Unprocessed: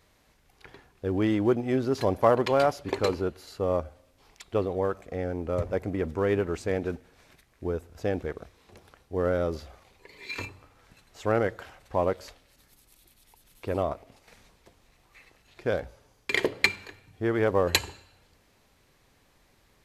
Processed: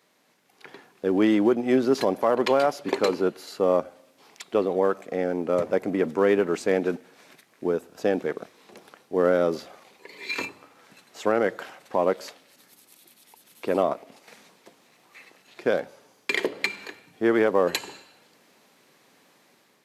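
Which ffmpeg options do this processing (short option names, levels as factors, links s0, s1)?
-filter_complex "[0:a]asettb=1/sr,asplit=3[s0][s1][s2];[s0]atrim=end=7.774[s3];[s1]atrim=start=7.77:end=8.2,asetpts=PTS-STARTPTS,afade=t=in:d=0.004:c=qsin,afade=t=out:st=0.426:d=0.004:c=qsin,bandreject=f=2100:w=12[s4];[s2]atrim=start=8.196[s5];[s3][s4]acrossfade=d=0.004:c1=hsin:c2=qsin[s6];[s6][s5]acrossfade=d=0.004:c1=qsin:c2=hsin,highpass=f=180:w=0.5412,highpass=f=180:w=1.3066,alimiter=limit=0.15:level=0:latency=1:release=209,dynaudnorm=f=230:g=5:m=2"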